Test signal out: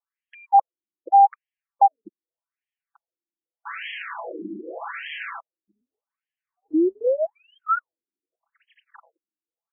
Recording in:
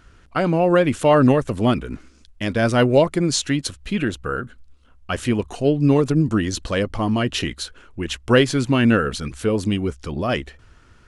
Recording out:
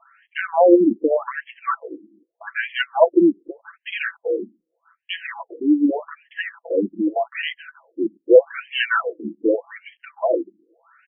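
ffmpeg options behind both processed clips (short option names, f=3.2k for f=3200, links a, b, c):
-af "adynamicsmooth=sensitivity=5:basefreq=6k,asoftclip=type=tanh:threshold=-6.5dB,aecho=1:1:6:1,afftfilt=real='re*between(b*sr/1024,270*pow(2400/270,0.5+0.5*sin(2*PI*0.83*pts/sr))/1.41,270*pow(2400/270,0.5+0.5*sin(2*PI*0.83*pts/sr))*1.41)':imag='im*between(b*sr/1024,270*pow(2400/270,0.5+0.5*sin(2*PI*0.83*pts/sr))/1.41,270*pow(2400/270,0.5+0.5*sin(2*PI*0.83*pts/sr))*1.41)':win_size=1024:overlap=0.75,volume=3.5dB"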